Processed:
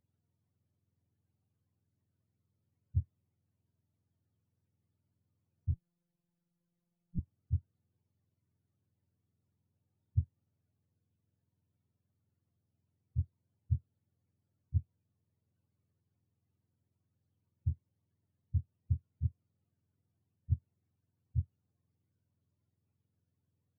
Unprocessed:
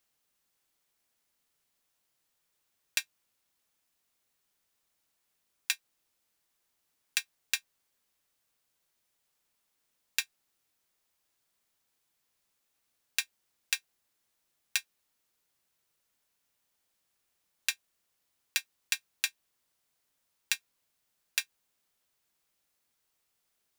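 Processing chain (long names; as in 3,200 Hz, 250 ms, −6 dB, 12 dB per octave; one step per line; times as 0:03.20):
frequency axis turned over on the octave scale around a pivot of 440 Hz
0:05.74–0:07.19: phases set to zero 173 Hz
level +3 dB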